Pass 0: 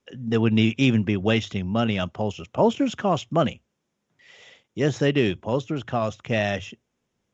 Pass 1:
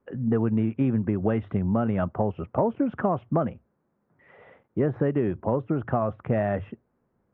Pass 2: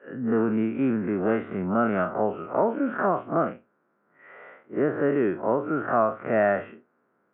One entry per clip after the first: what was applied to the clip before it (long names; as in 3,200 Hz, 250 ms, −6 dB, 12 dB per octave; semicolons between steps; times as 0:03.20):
low-pass filter 1,500 Hz 24 dB per octave; downward compressor, threshold −26 dBFS, peak gain reduction 12 dB; level +5.5 dB
spectrum smeared in time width 97 ms; loudspeaker in its box 330–2,800 Hz, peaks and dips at 500 Hz −3 dB, 850 Hz −4 dB, 1,400 Hz +9 dB; level +8 dB